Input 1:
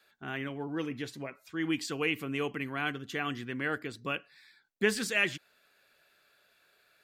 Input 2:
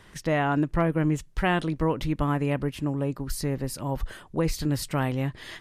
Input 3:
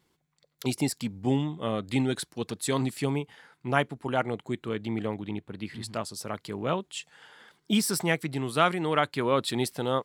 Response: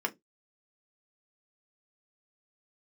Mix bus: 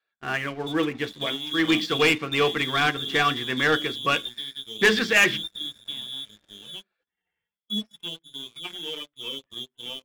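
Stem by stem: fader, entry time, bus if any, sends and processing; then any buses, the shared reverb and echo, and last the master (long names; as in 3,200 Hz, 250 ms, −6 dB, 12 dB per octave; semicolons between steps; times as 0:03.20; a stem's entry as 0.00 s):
+0.5 dB, 0.00 s, no bus, send −8.5 dB, low-pass filter 4,700 Hz 24 dB per octave
−9.0 dB, 0.95 s, bus A, send −23 dB, flat-topped bell 1,100 Hz −14 dB 2.6 octaves
−9.5 dB, 0.00 s, bus A, send −14 dB, harmonic-percussive split with one part muted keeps harmonic
bus A: 0.0 dB, voice inversion scrambler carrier 3,600 Hz; downward compressor 4 to 1, threshold −36 dBFS, peak gain reduction 8 dB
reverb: on, RT60 0.15 s, pre-delay 3 ms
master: leveller curve on the samples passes 3; expander for the loud parts 1.5 to 1, over −41 dBFS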